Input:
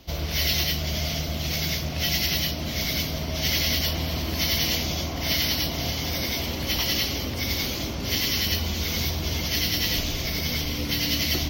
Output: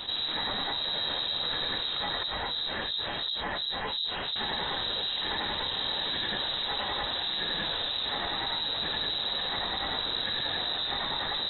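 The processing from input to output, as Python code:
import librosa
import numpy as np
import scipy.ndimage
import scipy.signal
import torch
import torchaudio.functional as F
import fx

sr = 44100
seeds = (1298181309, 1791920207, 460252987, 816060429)

y = fx.rider(x, sr, range_db=10, speed_s=0.5)
y = fx.harmonic_tremolo(y, sr, hz=2.8, depth_pct=100, crossover_hz=710.0, at=(2.23, 4.36))
y = fx.echo_feedback(y, sr, ms=1054, feedback_pct=27, wet_db=-12.5)
y = fx.freq_invert(y, sr, carrier_hz=3900)
y = fx.env_flatten(y, sr, amount_pct=70)
y = y * 10.0 ** (-7.5 / 20.0)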